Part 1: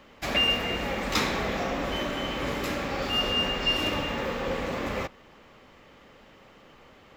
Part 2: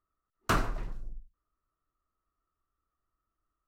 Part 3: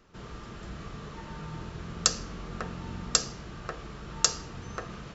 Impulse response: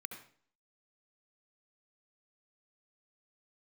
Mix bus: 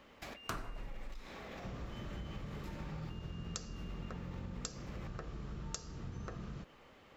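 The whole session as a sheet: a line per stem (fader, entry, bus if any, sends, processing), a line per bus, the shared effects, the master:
-13.0 dB, 0.00 s, no send, negative-ratio compressor -35 dBFS, ratio -1
+2.0 dB, 0.00 s, no send, dry
-5.5 dB, 1.50 s, no send, low shelf 370 Hz +11.5 dB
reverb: off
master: compressor 5:1, threshold -41 dBFS, peak gain reduction 17.5 dB

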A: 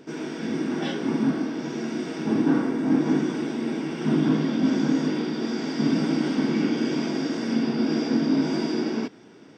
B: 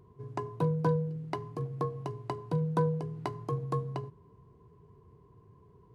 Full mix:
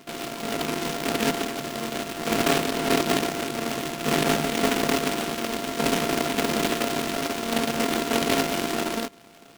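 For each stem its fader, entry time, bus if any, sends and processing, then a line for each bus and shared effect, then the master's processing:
-1.0 dB, 0.00 s, no send, sample sorter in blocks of 64 samples
-10.0 dB, 0.00 s, no send, dry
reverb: off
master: bell 71 Hz -5.5 dB 1.8 oct; noise-modulated delay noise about 1800 Hz, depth 0.13 ms

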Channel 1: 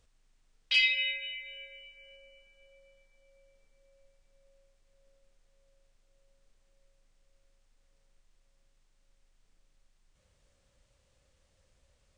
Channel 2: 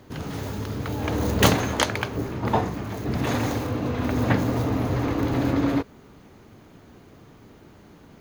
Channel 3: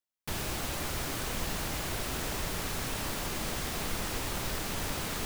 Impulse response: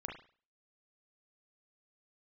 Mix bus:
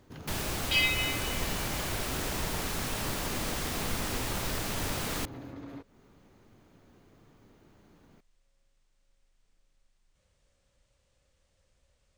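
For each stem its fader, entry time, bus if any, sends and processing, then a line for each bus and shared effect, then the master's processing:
-1.5 dB, 0.00 s, no send, dry
-11.0 dB, 0.00 s, no send, compressor 12:1, threshold -29 dBFS, peak gain reduction 18 dB
+1.0 dB, 0.00 s, no send, dry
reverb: off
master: dry

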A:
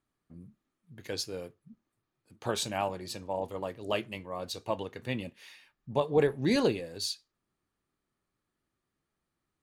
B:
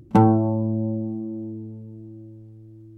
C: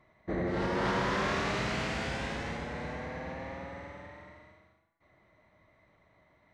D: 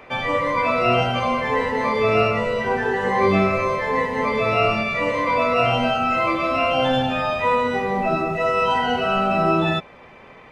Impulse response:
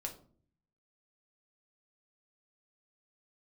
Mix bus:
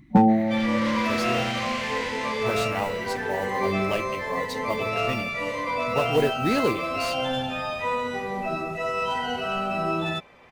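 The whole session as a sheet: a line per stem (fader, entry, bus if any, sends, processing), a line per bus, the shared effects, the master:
+2.5 dB, 0.00 s, no send, modulation noise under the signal 23 dB
+2.0 dB, 0.00 s, no send, spectral gate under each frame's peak -20 dB strong; fixed phaser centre 370 Hz, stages 6
-3.5 dB, 0.00 s, no send, steep high-pass 870 Hz; resonant high shelf 1700 Hz +7.5 dB, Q 1.5
-8.0 dB, 0.40 s, no send, high shelf 4800 Hz +11 dB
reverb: off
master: slew limiter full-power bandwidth 140 Hz

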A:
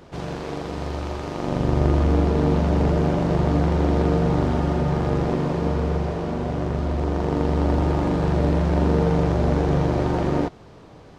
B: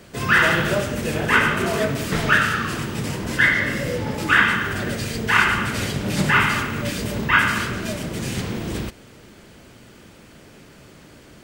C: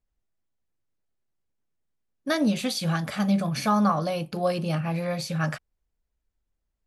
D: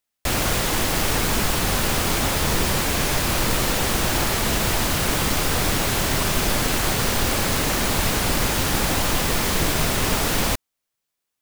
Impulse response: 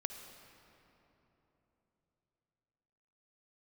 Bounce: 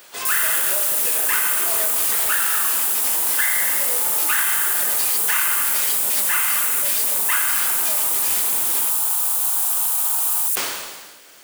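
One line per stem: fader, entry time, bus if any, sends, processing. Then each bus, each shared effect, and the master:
-4.5 dB, 0.00 s, no send, inverse Chebyshev high-pass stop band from 260 Hz, stop band 50 dB; high shelf 2200 Hz +8.5 dB; fixed phaser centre 2000 Hz, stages 6
-0.5 dB, 0.00 s, no send, compressor 5:1, threshold -23 dBFS, peak gain reduction 11.5 dB; HPF 640 Hz 12 dB/oct
off
+1.5 dB, 0.00 s, no send, inverse Chebyshev high-pass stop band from 1600 Hz, stop band 80 dB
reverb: off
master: companded quantiser 4-bit; high shelf 4000 Hz +8.5 dB; sustainer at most 40 dB/s

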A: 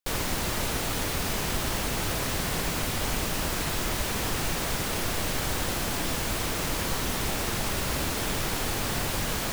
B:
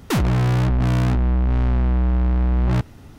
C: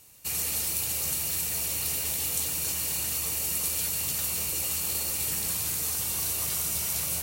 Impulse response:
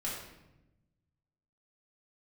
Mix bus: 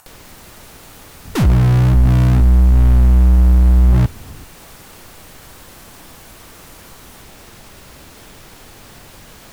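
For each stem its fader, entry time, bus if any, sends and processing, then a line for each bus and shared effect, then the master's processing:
-13.0 dB, 0.00 s, no send, dry
+0.5 dB, 1.25 s, no send, low shelf 160 Hz +9.5 dB
-18.0 dB, 0.00 s, no send, band shelf 1100 Hz +15.5 dB; limiter -21 dBFS, peak gain reduction 7.5 dB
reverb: off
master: upward compressor, threshold -35 dBFS

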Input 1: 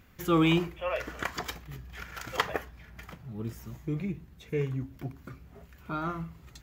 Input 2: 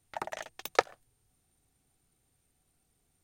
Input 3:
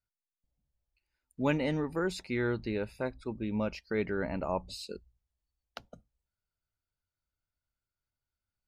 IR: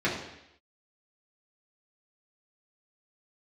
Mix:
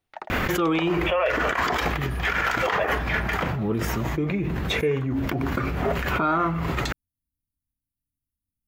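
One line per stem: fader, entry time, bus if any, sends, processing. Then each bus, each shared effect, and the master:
+3.0 dB, 0.30 s, no send, high shelf 4200 Hz -6.5 dB; fast leveller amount 100%
+0.5 dB, 0.00 s, no send, Chebyshev low-pass 5000 Hz, order 2
-8.0 dB, 0.00 s, no send, FFT band-reject 310–8900 Hz; spectral compressor 2:1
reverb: off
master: tone controls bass -10 dB, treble -8 dB; limiter -14 dBFS, peak gain reduction 9.5 dB

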